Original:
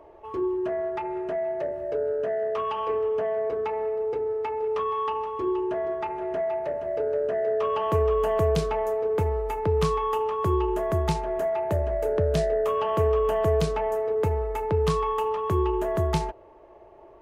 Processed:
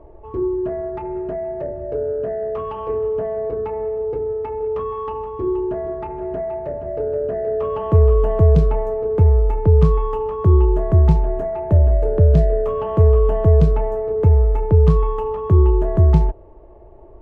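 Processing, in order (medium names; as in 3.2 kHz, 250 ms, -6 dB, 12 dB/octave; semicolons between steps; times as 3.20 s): tilt EQ -4.5 dB/octave; trim -1 dB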